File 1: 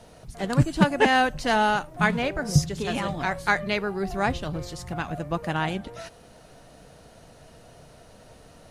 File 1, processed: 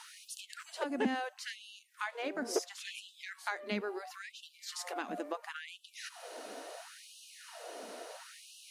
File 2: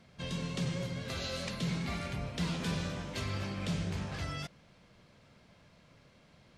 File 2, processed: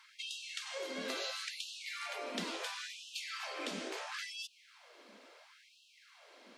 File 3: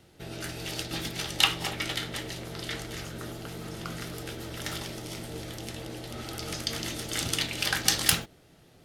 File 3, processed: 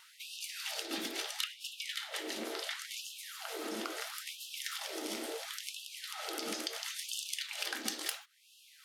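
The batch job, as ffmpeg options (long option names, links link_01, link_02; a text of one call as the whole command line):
ffmpeg -i in.wav -filter_complex "[0:a]acrossover=split=190[link_01][link_02];[link_01]asoftclip=type=hard:threshold=-19dB[link_03];[link_02]acompressor=threshold=-42dB:ratio=6[link_04];[link_03][link_04]amix=inputs=2:normalize=0,afftfilt=real='re*gte(b*sr/1024,210*pow(2600/210,0.5+0.5*sin(2*PI*0.73*pts/sr)))':imag='im*gte(b*sr/1024,210*pow(2600/210,0.5+0.5*sin(2*PI*0.73*pts/sr)))':win_size=1024:overlap=0.75,volume=6dB" out.wav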